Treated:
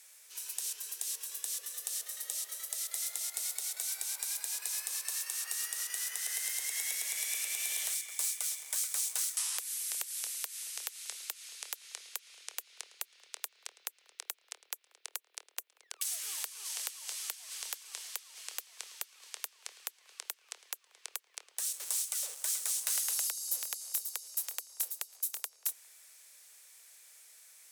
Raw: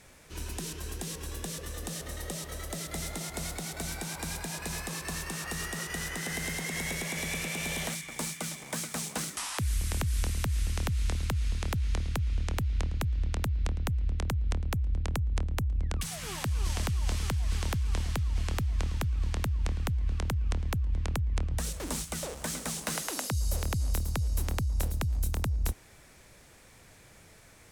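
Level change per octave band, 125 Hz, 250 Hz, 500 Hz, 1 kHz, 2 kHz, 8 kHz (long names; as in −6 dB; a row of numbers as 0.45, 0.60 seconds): below −40 dB, below −40 dB, −19.5 dB, −13.5 dB, −7.5 dB, +4.0 dB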